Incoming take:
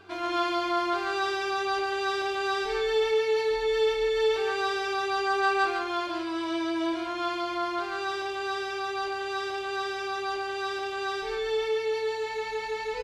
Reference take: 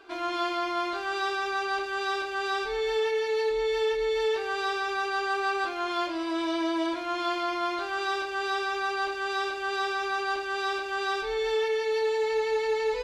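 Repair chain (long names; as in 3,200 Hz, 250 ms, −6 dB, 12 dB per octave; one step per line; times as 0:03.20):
hum removal 96.2 Hz, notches 4
echo removal 140 ms −3.5 dB
level correction +3 dB, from 0:05.77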